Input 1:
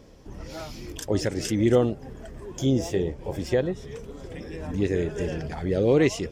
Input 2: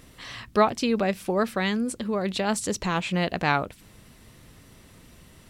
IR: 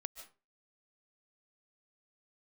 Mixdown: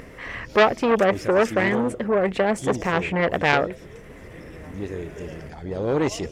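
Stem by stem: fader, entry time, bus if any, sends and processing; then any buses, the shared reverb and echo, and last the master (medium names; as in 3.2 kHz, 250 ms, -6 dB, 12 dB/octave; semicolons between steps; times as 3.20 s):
0.0 dB, 0.00 s, send -8 dB, auto duck -12 dB, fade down 0.70 s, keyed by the second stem
+2.0 dB, 0.00 s, no send, graphic EQ 500/2000/4000 Hz +10/+11/-11 dB; upward compressor, threshold -39 dBFS; treble shelf 5.5 kHz -11 dB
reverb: on, RT60 0.30 s, pre-delay 105 ms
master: transformer saturation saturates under 1.8 kHz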